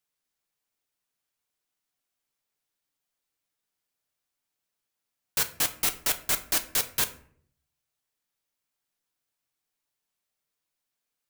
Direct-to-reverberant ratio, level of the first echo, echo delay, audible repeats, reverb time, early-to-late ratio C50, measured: 6.5 dB, no echo, no echo, no echo, 0.60 s, 15.0 dB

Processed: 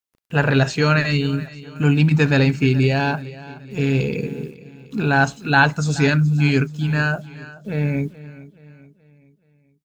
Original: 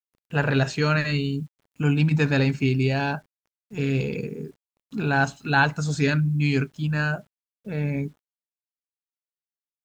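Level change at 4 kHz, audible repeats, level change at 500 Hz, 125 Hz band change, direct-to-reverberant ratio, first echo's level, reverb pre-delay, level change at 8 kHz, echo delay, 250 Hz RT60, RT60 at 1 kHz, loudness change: +5.0 dB, 3, +5.0 dB, +5.0 dB, no reverb, -18.0 dB, no reverb, +5.0 dB, 426 ms, no reverb, no reverb, +5.0 dB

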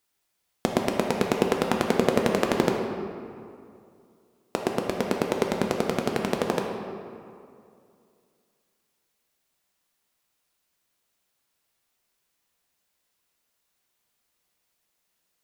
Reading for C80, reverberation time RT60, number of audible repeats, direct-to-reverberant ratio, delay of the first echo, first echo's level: 4.5 dB, 2.4 s, no echo, 1.0 dB, no echo, no echo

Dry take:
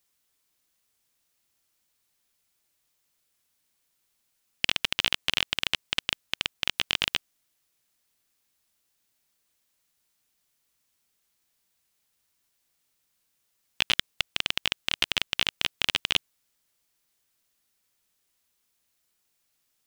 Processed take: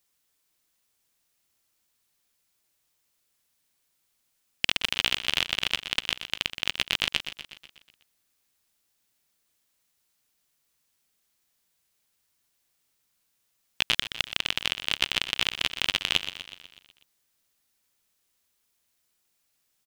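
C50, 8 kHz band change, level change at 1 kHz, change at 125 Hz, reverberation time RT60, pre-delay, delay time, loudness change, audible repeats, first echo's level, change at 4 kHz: no reverb, +0.5 dB, +0.5 dB, +0.5 dB, no reverb, no reverb, 123 ms, +0.5 dB, 6, -11.0 dB, +0.5 dB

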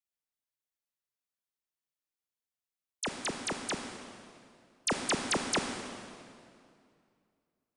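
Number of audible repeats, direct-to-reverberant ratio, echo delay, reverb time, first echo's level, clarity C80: no echo, 4.0 dB, no echo, 2.4 s, no echo, 6.0 dB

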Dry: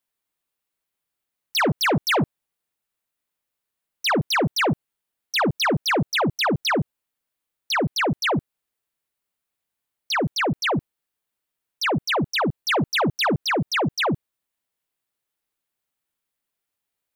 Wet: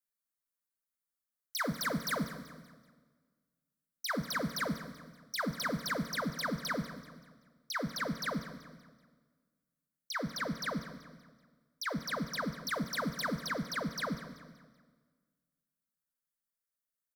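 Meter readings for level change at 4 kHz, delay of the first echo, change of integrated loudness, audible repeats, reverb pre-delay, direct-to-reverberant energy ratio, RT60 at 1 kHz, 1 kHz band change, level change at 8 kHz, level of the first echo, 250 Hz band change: -15.0 dB, 191 ms, -13.5 dB, 3, 11 ms, 9.0 dB, 1.5 s, -14.0 dB, -9.0 dB, -15.5 dB, -12.0 dB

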